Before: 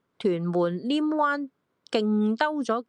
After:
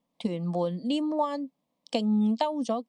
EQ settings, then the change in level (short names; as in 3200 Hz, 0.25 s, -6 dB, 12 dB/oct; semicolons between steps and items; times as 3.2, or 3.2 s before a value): fixed phaser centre 390 Hz, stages 6; 0.0 dB